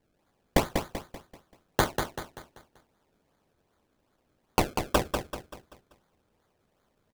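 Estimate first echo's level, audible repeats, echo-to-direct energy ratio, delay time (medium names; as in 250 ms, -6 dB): -6.0 dB, 4, -5.0 dB, 193 ms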